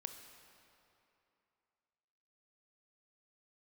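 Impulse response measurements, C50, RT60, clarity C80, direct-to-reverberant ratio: 7.0 dB, 2.9 s, 8.0 dB, 6.0 dB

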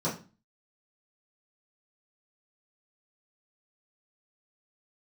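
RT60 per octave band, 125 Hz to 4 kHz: 0.45, 0.50, 0.35, 0.35, 0.35, 0.30 seconds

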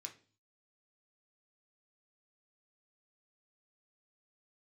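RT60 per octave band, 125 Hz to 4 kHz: 0.70, 0.55, 0.45, 0.35, 0.40, 0.45 seconds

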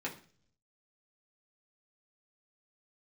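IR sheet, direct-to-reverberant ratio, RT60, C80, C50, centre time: −4.5 dB, 0.45 s, 17.0 dB, 12.0 dB, 15 ms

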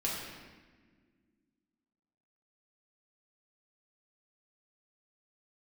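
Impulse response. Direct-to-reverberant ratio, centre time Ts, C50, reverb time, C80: −5.0 dB, 83 ms, 0.5 dB, non-exponential decay, 2.5 dB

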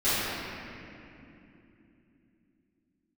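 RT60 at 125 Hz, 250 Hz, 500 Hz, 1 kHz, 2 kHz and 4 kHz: 4.2, 5.0, 3.4, 2.5, 2.7, 1.9 seconds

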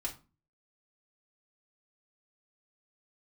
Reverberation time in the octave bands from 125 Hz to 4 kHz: 0.55, 0.50, 0.30, 0.30, 0.25, 0.25 seconds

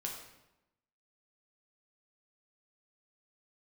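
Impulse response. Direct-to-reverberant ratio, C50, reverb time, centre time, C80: −1.0 dB, 4.5 dB, 0.95 s, 39 ms, 6.5 dB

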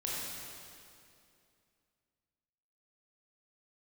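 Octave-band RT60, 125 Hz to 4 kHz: 2.8, 2.8, 2.7, 2.4, 2.3, 2.2 seconds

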